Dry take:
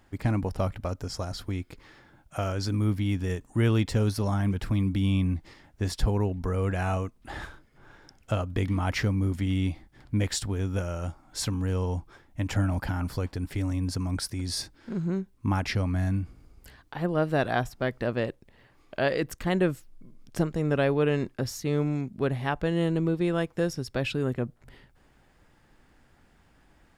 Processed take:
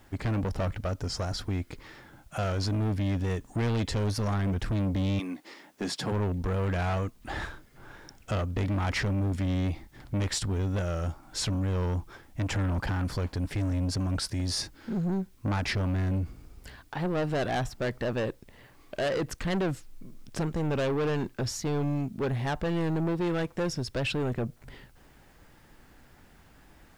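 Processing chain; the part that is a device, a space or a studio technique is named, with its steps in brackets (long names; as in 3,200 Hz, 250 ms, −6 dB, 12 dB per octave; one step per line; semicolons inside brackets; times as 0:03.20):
0:05.18–0:06.11: high-pass filter 340 Hz → 140 Hz 24 dB per octave
compact cassette (soft clipping −29.5 dBFS, distortion −8 dB; low-pass filter 8,800 Hz 12 dB per octave; tape wow and flutter; white noise bed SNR 39 dB)
level +4.5 dB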